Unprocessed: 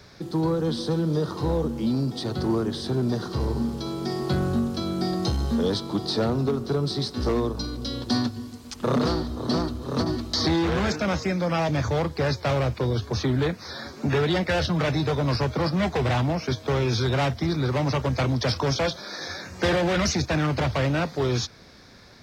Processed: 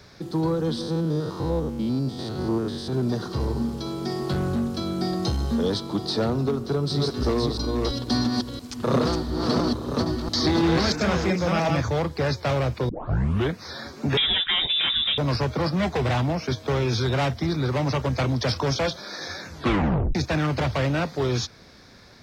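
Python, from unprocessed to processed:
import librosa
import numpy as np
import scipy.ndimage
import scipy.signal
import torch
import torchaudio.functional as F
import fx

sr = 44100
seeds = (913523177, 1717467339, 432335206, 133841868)

y = fx.spec_steps(x, sr, hold_ms=100, at=(0.81, 2.93))
y = fx.clip_hard(y, sr, threshold_db=-20.0, at=(4.17, 4.91))
y = fx.reverse_delay(y, sr, ms=339, wet_db=-2.5, at=(6.56, 11.81))
y = fx.freq_invert(y, sr, carrier_hz=3700, at=(14.17, 15.18))
y = fx.edit(y, sr, fx.tape_start(start_s=12.89, length_s=0.64),
    fx.tape_stop(start_s=19.47, length_s=0.68), tone=tone)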